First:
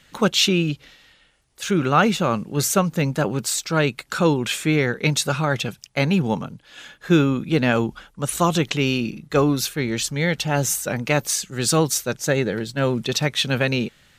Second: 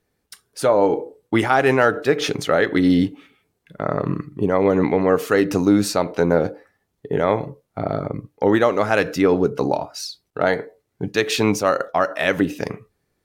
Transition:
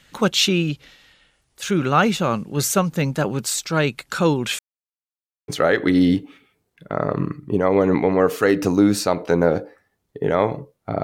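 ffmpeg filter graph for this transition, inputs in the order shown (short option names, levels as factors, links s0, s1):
-filter_complex "[0:a]apad=whole_dur=11.03,atrim=end=11.03,asplit=2[s0][s1];[s0]atrim=end=4.59,asetpts=PTS-STARTPTS,afade=t=out:st=4.586:d=0.004:c=hsin[s2];[s1]atrim=start=4.59:end=5.48,asetpts=PTS-STARTPTS,volume=0[s3];[1:a]atrim=start=2.37:end=7.92,asetpts=PTS-STARTPTS,afade=t=in:d=0.004:c=hsin[s4];[s2][s3][s4]concat=n=3:v=0:a=1"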